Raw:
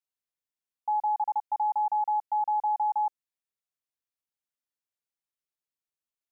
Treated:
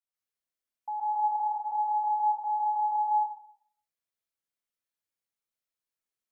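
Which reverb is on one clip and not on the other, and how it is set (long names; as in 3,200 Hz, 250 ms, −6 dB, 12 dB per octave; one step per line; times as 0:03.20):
dense smooth reverb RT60 0.59 s, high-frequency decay 0.8×, pre-delay 115 ms, DRR −7 dB
level −7 dB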